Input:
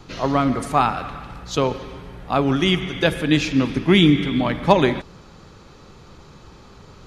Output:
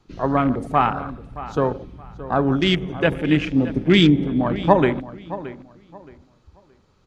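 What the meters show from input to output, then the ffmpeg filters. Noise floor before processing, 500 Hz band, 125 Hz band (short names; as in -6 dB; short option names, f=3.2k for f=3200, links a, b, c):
-46 dBFS, 0.0 dB, 0.0 dB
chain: -filter_complex "[0:a]afwtdn=0.0562,asplit=2[a][b];[b]adelay=622,lowpass=f=3.6k:p=1,volume=-15dB,asplit=2[c][d];[d]adelay=622,lowpass=f=3.6k:p=1,volume=0.25,asplit=2[e][f];[f]adelay=622,lowpass=f=3.6k:p=1,volume=0.25[g];[c][e][g]amix=inputs=3:normalize=0[h];[a][h]amix=inputs=2:normalize=0"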